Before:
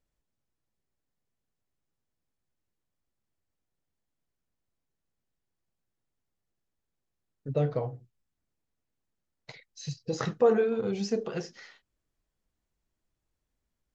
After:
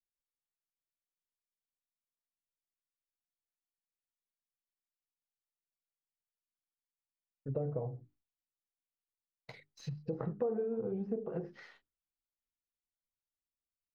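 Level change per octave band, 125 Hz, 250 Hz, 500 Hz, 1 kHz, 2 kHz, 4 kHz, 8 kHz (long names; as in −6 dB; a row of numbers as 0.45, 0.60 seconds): −6.0 dB, −7.0 dB, −9.5 dB, −12.5 dB, −14.5 dB, −16.5 dB, can't be measured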